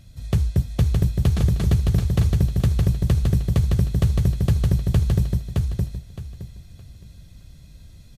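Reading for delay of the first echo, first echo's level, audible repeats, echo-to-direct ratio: 616 ms, −3.0 dB, 3, −2.5 dB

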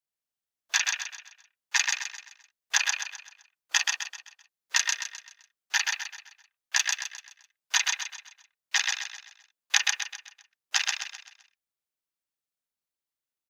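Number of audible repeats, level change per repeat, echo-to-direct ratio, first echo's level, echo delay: 5, −7.5 dB, −2.5 dB, −3.5 dB, 129 ms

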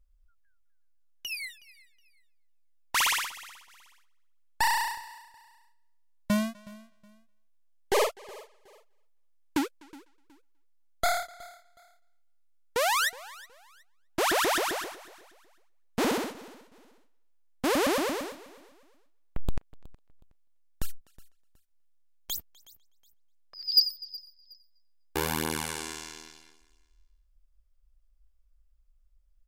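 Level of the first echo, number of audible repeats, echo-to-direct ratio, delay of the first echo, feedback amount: −21.0 dB, 2, −20.5 dB, 368 ms, 28%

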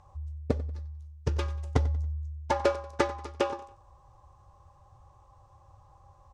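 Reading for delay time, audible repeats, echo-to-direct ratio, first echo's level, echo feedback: 93 ms, 3, −17.5 dB, −18.0 dB, 38%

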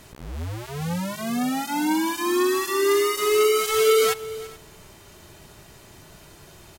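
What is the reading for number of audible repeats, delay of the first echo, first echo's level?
2, 336 ms, −19.5 dB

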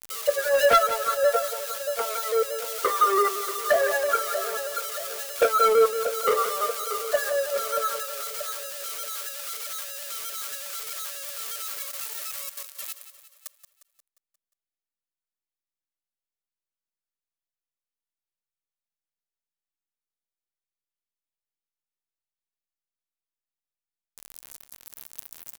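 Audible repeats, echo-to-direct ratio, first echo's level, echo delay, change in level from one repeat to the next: 5, −10.5 dB, −12.0 dB, 177 ms, −5.5 dB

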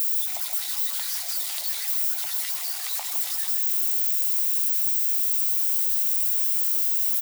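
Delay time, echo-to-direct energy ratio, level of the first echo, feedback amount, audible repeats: 161 ms, −6.5 dB, −6.5 dB, repeats not evenly spaced, 1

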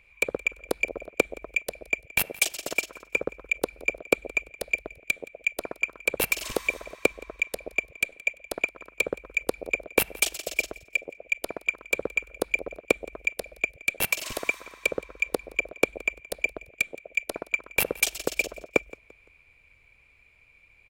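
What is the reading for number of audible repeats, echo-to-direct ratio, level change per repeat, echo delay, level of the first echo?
2, −21.0 dB, −9.0 dB, 171 ms, −21.5 dB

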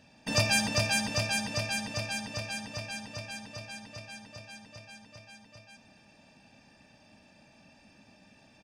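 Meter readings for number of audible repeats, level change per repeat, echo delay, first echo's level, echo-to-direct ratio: 2, −8.0 dB, 274 ms, −19.0 dB, −18.5 dB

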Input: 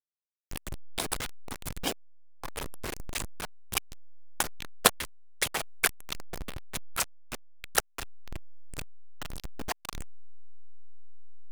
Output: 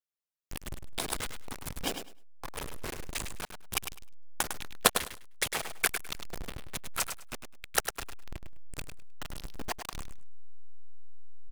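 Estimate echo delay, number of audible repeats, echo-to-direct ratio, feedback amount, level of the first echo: 103 ms, 2, −8.0 dB, 18%, −8.0 dB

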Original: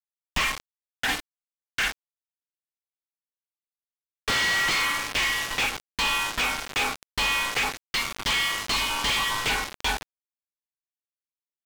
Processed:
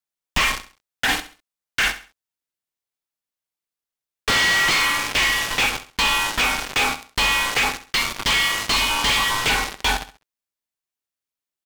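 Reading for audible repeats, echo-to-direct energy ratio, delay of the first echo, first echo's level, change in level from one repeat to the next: 3, −13.0 dB, 67 ms, −13.5 dB, −10.0 dB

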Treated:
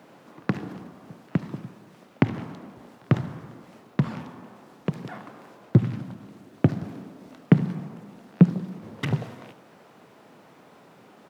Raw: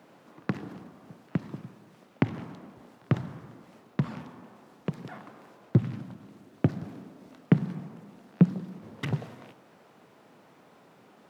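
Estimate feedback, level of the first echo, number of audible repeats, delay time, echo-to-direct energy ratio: 19%, −19.0 dB, 1, 75 ms, −19.0 dB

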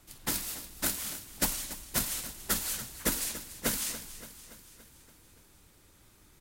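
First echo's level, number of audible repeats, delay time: −14.0 dB, 5, 285 ms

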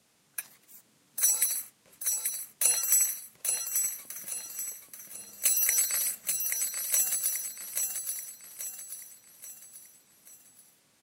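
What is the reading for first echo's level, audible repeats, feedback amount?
−5.0 dB, 5, 43%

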